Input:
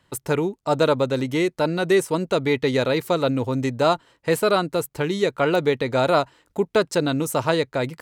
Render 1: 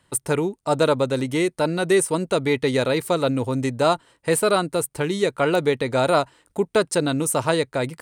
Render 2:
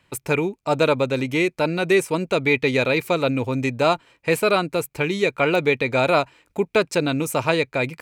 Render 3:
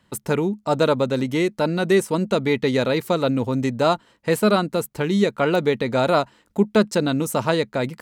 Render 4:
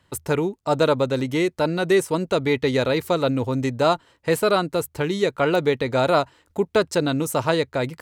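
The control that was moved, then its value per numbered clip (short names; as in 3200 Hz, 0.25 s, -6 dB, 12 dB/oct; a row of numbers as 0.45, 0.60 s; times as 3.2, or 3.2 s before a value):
bell, frequency: 9000, 2400, 210, 80 Hz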